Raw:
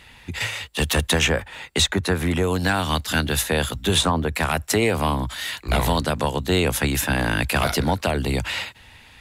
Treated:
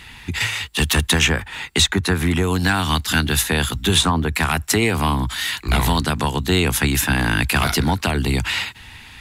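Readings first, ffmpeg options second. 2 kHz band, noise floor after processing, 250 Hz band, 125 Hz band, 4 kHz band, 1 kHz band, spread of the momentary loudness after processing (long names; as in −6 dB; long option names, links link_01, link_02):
+4.0 dB, −41 dBFS, +3.0 dB, +4.0 dB, +4.0 dB, +2.0 dB, 6 LU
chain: -filter_complex "[0:a]equalizer=frequency=560:width=2.5:gain=-11.5,asplit=2[link_01][link_02];[link_02]acompressor=threshold=-31dB:ratio=6,volume=-1dB[link_03];[link_01][link_03]amix=inputs=2:normalize=0,volume=2dB"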